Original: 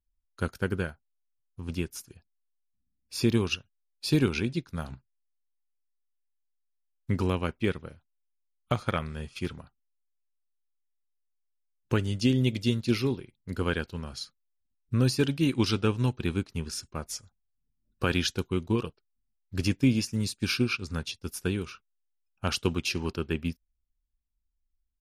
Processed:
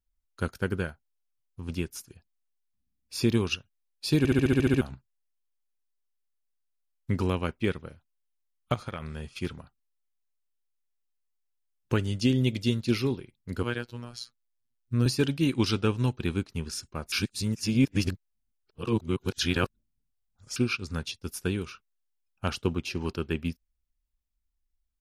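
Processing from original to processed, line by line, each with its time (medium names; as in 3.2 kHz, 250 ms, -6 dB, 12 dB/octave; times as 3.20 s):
4.18 s: stutter in place 0.07 s, 9 plays
8.74–9.28 s: compression, threshold -31 dBFS
13.63–15.06 s: robot voice 120 Hz
17.12–20.56 s: reverse
22.50–23.01 s: treble shelf 2 kHz -8 dB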